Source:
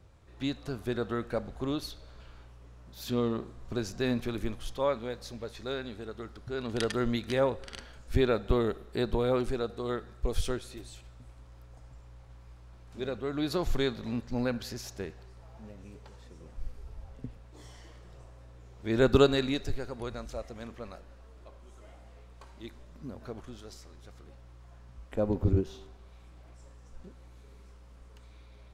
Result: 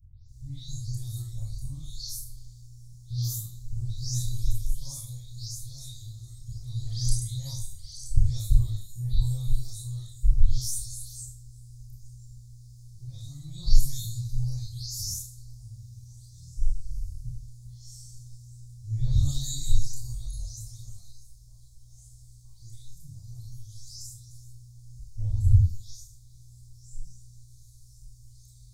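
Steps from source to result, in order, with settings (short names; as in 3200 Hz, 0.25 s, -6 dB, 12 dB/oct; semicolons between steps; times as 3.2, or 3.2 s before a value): spectral delay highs late, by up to 0.286 s; inverse Chebyshev band-stop 220–2900 Hz, stop band 40 dB; Schroeder reverb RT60 0.37 s, combs from 25 ms, DRR -5 dB; gain +8 dB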